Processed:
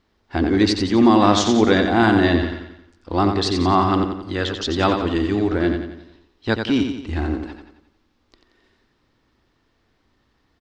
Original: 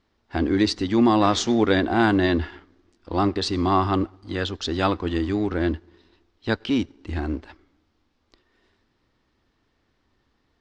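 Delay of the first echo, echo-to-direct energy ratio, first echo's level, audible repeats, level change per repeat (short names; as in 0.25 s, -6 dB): 89 ms, -5.5 dB, -6.5 dB, 5, -6.5 dB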